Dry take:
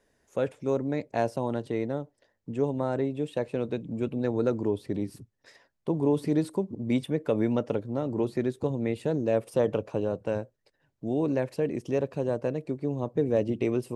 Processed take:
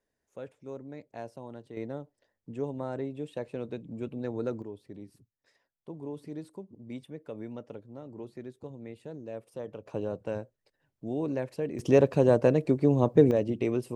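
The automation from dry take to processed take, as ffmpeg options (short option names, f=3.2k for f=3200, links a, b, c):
-af "asetnsamples=n=441:p=0,asendcmd='1.77 volume volume -6.5dB;4.62 volume volume -14.5dB;9.86 volume volume -4.5dB;11.79 volume volume 7dB;13.31 volume volume -1.5dB',volume=-14dB"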